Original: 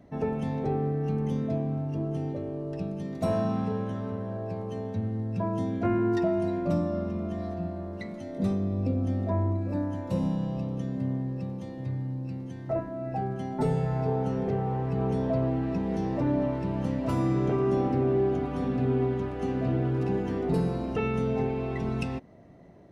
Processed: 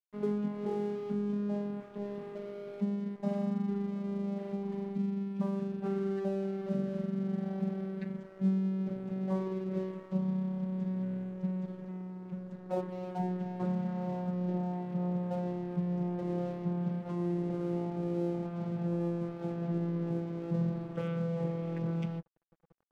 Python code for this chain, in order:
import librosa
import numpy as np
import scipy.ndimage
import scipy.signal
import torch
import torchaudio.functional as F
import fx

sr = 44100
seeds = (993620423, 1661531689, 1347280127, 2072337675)

y = fx.vocoder_glide(x, sr, note=56, semitones=-4)
y = fx.rider(y, sr, range_db=3, speed_s=0.5)
y = np.sign(y) * np.maximum(np.abs(y) - 10.0 ** (-46.5 / 20.0), 0.0)
y = y * 10.0 ** (-3.0 / 20.0)